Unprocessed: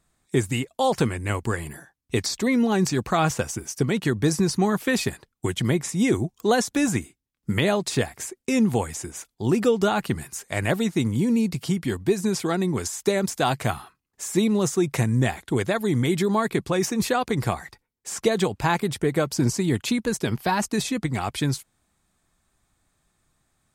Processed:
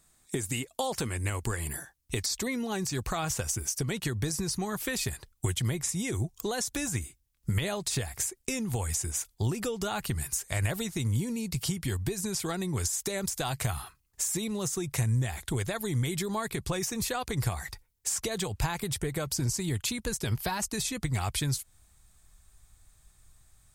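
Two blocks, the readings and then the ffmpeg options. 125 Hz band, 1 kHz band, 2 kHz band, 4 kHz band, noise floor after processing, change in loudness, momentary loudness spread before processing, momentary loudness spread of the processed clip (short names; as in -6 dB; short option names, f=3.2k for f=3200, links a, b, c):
-4.5 dB, -10.0 dB, -7.5 dB, -4.0 dB, -67 dBFS, -7.0 dB, 8 LU, 4 LU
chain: -af "highshelf=f=4.3k:g=11.5,alimiter=limit=-12dB:level=0:latency=1:release=90,acompressor=threshold=-29dB:ratio=4,asubboost=boost=7:cutoff=85"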